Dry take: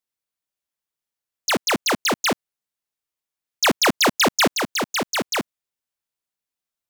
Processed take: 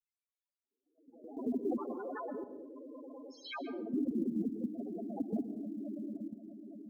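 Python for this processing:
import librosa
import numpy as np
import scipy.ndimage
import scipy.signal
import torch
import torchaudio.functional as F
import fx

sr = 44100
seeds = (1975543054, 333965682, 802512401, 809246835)

y = fx.spec_swells(x, sr, rise_s=0.66)
y = fx.env_lowpass_down(y, sr, base_hz=350.0, full_db=-11.5)
y = fx.weighting(y, sr, curve='ITU-R 468', at=(1.77, 3.91), fade=0.02)
y = fx.echo_swell(y, sr, ms=109, loudest=5, wet_db=-17.5)
y = y * (1.0 - 0.46 / 2.0 + 0.46 / 2.0 * np.cos(2.0 * np.pi * 0.52 * (np.arange(len(y)) / sr)))
y = fx.spec_topn(y, sr, count=2)
y = fx.rotary(y, sr, hz=5.0)
y = fx.level_steps(y, sr, step_db=12)
y = fx.high_shelf(y, sr, hz=9800.0, db=-8.0)
y = fx.rev_plate(y, sr, seeds[0], rt60_s=0.6, hf_ratio=0.65, predelay_ms=115, drr_db=11.0)
y = fx.quant_float(y, sr, bits=6)
y = fx.band_squash(y, sr, depth_pct=40)
y = y * librosa.db_to_amplitude(4.5)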